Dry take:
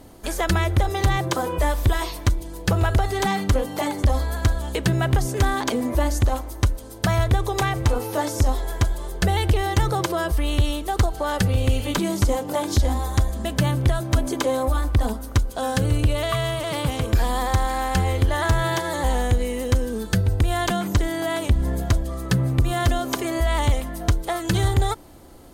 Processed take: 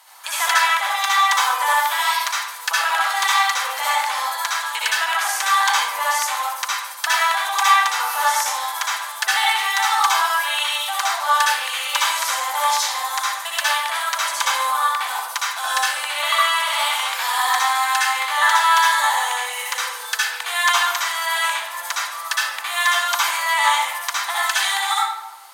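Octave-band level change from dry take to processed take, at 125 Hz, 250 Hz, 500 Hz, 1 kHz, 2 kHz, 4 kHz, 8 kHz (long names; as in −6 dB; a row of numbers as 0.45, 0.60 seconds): below −40 dB, below −35 dB, −10.0 dB, +9.0 dB, +11.5 dB, +11.0 dB, +9.5 dB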